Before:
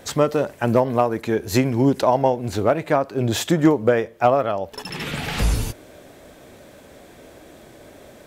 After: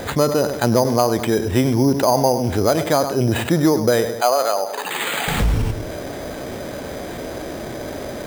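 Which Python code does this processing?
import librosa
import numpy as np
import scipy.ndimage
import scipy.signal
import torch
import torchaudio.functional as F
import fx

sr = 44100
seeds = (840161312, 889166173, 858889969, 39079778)

y = fx.highpass(x, sr, hz=550.0, slope=12, at=(4.09, 5.28))
y = fx.echo_filtered(y, sr, ms=102, feedback_pct=35, hz=2300.0, wet_db=-15.0)
y = np.repeat(scipy.signal.resample_poly(y, 1, 8), 8)[:len(y)]
y = fx.env_flatten(y, sr, amount_pct=50)
y = F.gain(torch.from_numpy(y), -1.5).numpy()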